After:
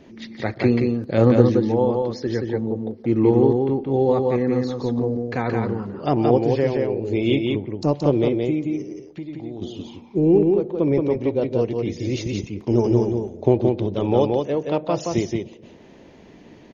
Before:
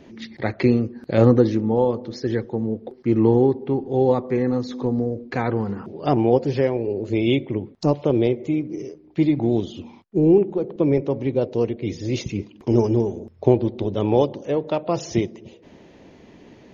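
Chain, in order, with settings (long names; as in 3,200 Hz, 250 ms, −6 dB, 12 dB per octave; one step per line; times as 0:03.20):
0:08.82–0:09.62: downward compressor 2.5 to 1, threshold −37 dBFS, peak gain reduction 15.5 dB
on a send: single-tap delay 174 ms −3.5 dB
on the sum: level −1 dB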